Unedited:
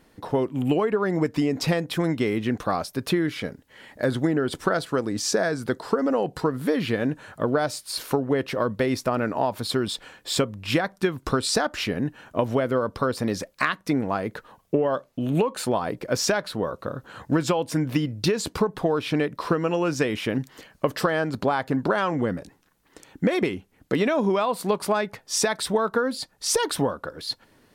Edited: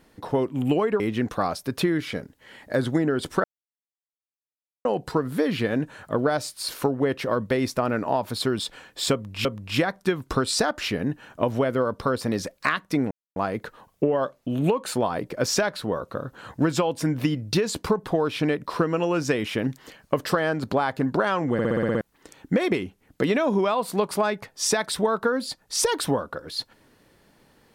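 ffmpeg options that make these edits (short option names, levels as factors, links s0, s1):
-filter_complex "[0:a]asplit=14[s0][s1][s2][s3][s4][s5][s6][s7][s8][s9][s10][s11][s12][s13];[s0]atrim=end=1.002[s14];[s1]atrim=start=2.288:end=4.73,asetpts=PTS-STARTPTS,afade=t=out:st=2.438:d=0.004:c=hsin[s15];[s2]atrim=start=4.73:end=6.14,asetpts=PTS-STARTPTS,volume=0[s16];[s3]atrim=start=6.14:end=10.742,asetpts=PTS-STARTPTS,afade=t=in:d=0.004:c=hsin[s17];[s4]atrim=start=10.408:end=14.07,asetpts=PTS-STARTPTS,afade=t=out:st=3.658:d=0.004:c=hsin,apad=pad_dur=0.25[s18];[s5]atrim=start=14.07:end=22.302,asetpts=PTS-STARTPTS,afade=t=in:d=0.004:c=hsin[s19];[s6]atrim=start=22.238:end=22.302[s20];[s7]atrim=start=22.238:end=22.302[s21];[s8]atrim=start=22.238:end=22.302[s22];[s9]atrim=start=22.238:end=22.302[s23];[s10]atrim=start=22.238:end=22.302[s24];[s11]atrim=start=22.238:end=22.302[s25];[s12]atrim=start=22.238:end=22.302[s26];[s13]atrim=start=22.718[s27];[s15][s16][s17]concat=n=3:v=0:a=1[s28];[s14][s28]acrossfade=d=0.004:c1=hsin:c2=hsin[s29];[s18][s19]concat=n=2:v=0:a=1[s30];[s29][s30]acrossfade=d=0.004:c1=hsin:c2=hsin[s31];[s31][s20]acrossfade=d=0.004:c1=hsin:c2=hsin[s32];[s32][s21]acrossfade=d=0.004:c1=hsin:c2=hsin[s33];[s33][s22]acrossfade=d=0.004:c1=hsin:c2=hsin[s34];[s34][s23]acrossfade=d=0.004:c1=hsin:c2=hsin[s35];[s35][s24]acrossfade=d=0.004:c1=hsin:c2=hsin[s36];[s36][s25]acrossfade=d=0.004:c1=hsin:c2=hsin[s37];[s37][s26]acrossfade=d=0.004:c1=hsin:c2=hsin[s38];[s38][s27]acrossfade=d=0.004:c1=hsin:c2=hsin"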